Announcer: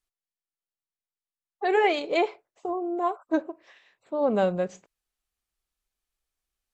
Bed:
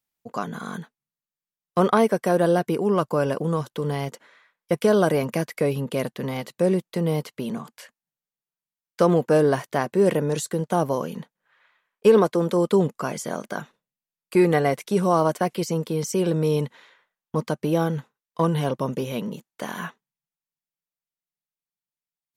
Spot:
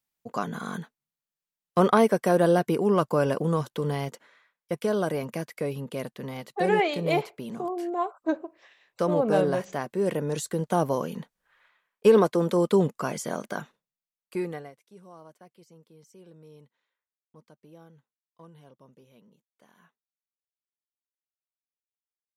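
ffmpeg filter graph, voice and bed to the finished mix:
ffmpeg -i stem1.wav -i stem2.wav -filter_complex "[0:a]adelay=4950,volume=-1.5dB[link_01];[1:a]volume=4.5dB,afade=type=out:start_time=3.69:duration=0.99:silence=0.473151,afade=type=in:start_time=10.01:duration=0.7:silence=0.530884,afade=type=out:start_time=13.49:duration=1.24:silence=0.0446684[link_02];[link_01][link_02]amix=inputs=2:normalize=0" out.wav

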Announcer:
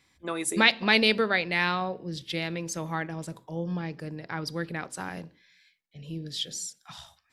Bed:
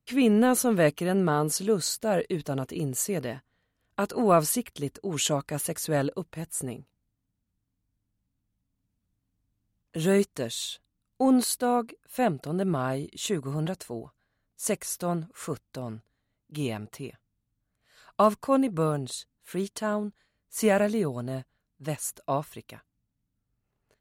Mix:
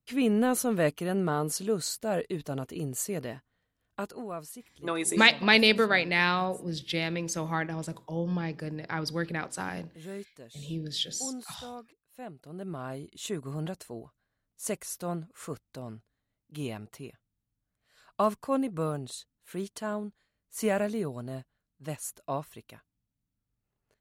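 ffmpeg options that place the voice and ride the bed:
ffmpeg -i stem1.wav -i stem2.wav -filter_complex "[0:a]adelay=4600,volume=1dB[link_01];[1:a]volume=9dB,afade=type=out:start_time=3.84:duration=0.45:silence=0.199526,afade=type=in:start_time=12.27:duration=1.16:silence=0.223872[link_02];[link_01][link_02]amix=inputs=2:normalize=0" out.wav

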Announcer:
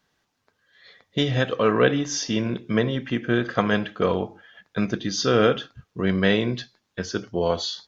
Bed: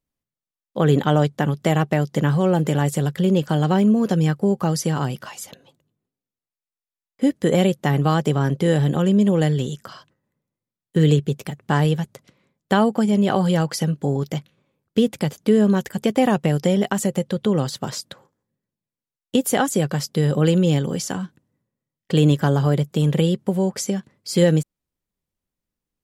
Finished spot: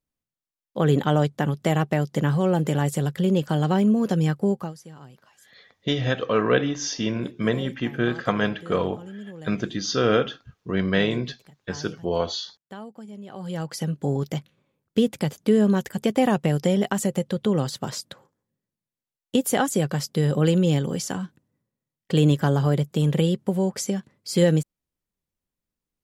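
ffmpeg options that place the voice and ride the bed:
ffmpeg -i stem1.wav -i stem2.wav -filter_complex "[0:a]adelay=4700,volume=-1.5dB[link_01];[1:a]volume=16.5dB,afade=type=out:start_time=4.5:duration=0.24:silence=0.112202,afade=type=in:start_time=13.32:duration=0.8:silence=0.105925[link_02];[link_01][link_02]amix=inputs=2:normalize=0" out.wav

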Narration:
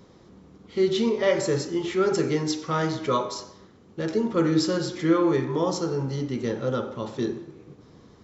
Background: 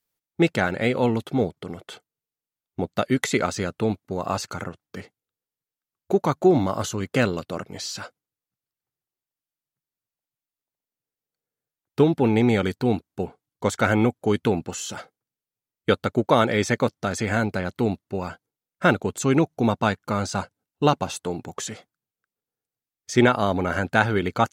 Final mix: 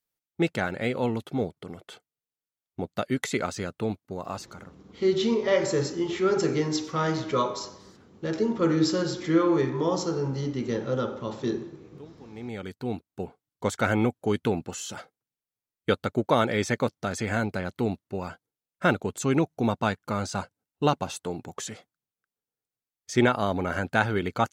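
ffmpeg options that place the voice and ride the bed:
ffmpeg -i stem1.wav -i stem2.wav -filter_complex "[0:a]adelay=4250,volume=-1dB[link_01];[1:a]volume=19dB,afade=type=out:start_time=4.04:duration=0.85:silence=0.0707946,afade=type=in:start_time=12.28:duration=1.19:silence=0.0595662[link_02];[link_01][link_02]amix=inputs=2:normalize=0" out.wav

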